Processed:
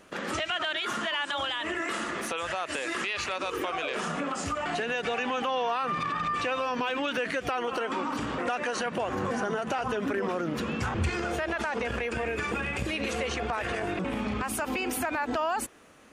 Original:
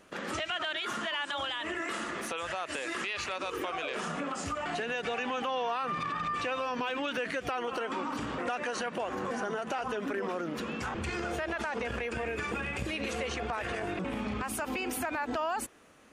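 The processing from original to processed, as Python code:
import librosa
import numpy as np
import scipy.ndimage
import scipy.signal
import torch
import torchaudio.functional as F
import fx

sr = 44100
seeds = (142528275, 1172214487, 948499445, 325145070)

y = fx.peak_eq(x, sr, hz=98.0, db=10.0, octaves=1.2, at=(8.85, 11.08))
y = y * librosa.db_to_amplitude(3.5)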